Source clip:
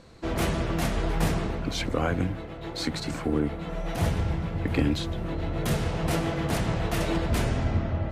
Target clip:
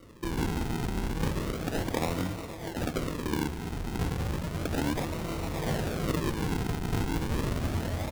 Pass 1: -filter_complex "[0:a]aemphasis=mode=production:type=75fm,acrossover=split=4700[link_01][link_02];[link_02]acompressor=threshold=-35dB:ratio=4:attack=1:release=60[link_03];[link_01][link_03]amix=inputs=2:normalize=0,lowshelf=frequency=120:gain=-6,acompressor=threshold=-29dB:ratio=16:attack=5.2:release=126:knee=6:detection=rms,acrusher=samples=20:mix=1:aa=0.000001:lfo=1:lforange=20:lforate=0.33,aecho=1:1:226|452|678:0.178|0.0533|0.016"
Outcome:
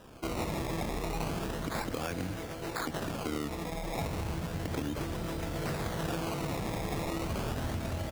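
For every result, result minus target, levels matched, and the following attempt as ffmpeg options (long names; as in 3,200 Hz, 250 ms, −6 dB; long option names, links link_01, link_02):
downward compressor: peak gain reduction +6.5 dB; sample-and-hold swept by an LFO: distortion −6 dB
-filter_complex "[0:a]aemphasis=mode=production:type=75fm,acrossover=split=4700[link_01][link_02];[link_02]acompressor=threshold=-35dB:ratio=4:attack=1:release=60[link_03];[link_01][link_03]amix=inputs=2:normalize=0,lowshelf=frequency=120:gain=-6,acompressor=threshold=-22dB:ratio=16:attack=5.2:release=126:knee=6:detection=rms,acrusher=samples=20:mix=1:aa=0.000001:lfo=1:lforange=20:lforate=0.33,aecho=1:1:226|452|678:0.178|0.0533|0.016"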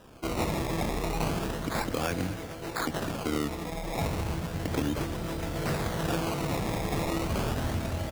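sample-and-hold swept by an LFO: distortion −6 dB
-filter_complex "[0:a]aemphasis=mode=production:type=75fm,acrossover=split=4700[link_01][link_02];[link_02]acompressor=threshold=-35dB:ratio=4:attack=1:release=60[link_03];[link_01][link_03]amix=inputs=2:normalize=0,lowshelf=frequency=120:gain=-6,acompressor=threshold=-22dB:ratio=16:attack=5.2:release=126:knee=6:detection=rms,acrusher=samples=52:mix=1:aa=0.000001:lfo=1:lforange=52:lforate=0.33,aecho=1:1:226|452|678:0.178|0.0533|0.016"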